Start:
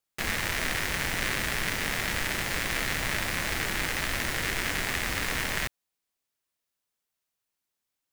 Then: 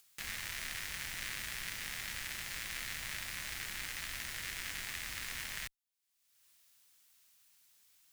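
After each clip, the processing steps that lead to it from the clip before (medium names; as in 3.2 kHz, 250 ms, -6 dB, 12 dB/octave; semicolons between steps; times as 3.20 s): amplifier tone stack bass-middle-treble 5-5-5; upward compressor, threshold -43 dBFS; trim -2.5 dB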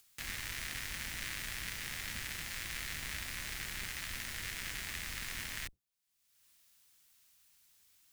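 octave divider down 1 oct, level +4 dB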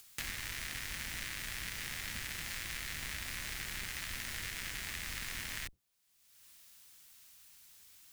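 compression 6:1, threshold -45 dBFS, peak gain reduction 9.5 dB; trim +8 dB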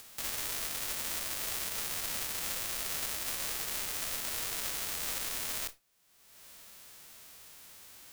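formants flattened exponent 0.1; peak limiter -26 dBFS, peak gain reduction 6.5 dB; on a send at -19 dB: reverberation, pre-delay 4 ms; on the sum: trim +6.5 dB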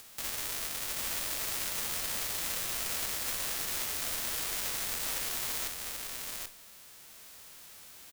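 delay 783 ms -3.5 dB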